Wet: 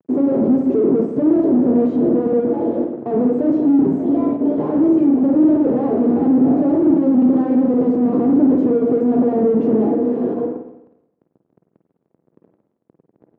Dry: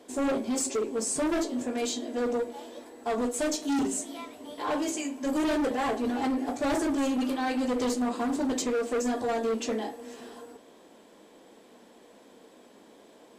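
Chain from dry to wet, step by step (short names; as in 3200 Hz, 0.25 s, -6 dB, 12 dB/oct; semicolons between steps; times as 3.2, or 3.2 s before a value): gate -45 dBFS, range -7 dB; low shelf 180 Hz -7 dB; fuzz box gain 50 dB, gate -54 dBFS; Butterworth band-pass 240 Hz, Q 0.78; reverb RT60 0.85 s, pre-delay 46 ms, DRR 5 dB; gain +1.5 dB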